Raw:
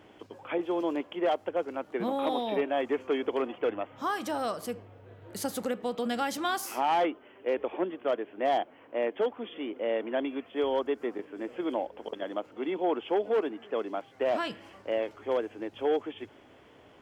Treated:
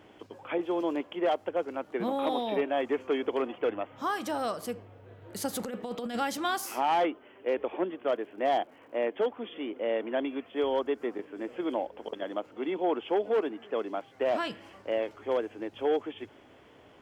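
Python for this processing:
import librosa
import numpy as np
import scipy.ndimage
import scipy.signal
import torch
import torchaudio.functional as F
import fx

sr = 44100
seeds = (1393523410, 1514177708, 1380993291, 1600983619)

y = fx.over_compress(x, sr, threshold_db=-33.0, ratio=-0.5, at=(5.53, 6.19))
y = fx.dmg_crackle(y, sr, seeds[0], per_s=180.0, level_db=-59.0, at=(8.11, 8.96), fade=0.02)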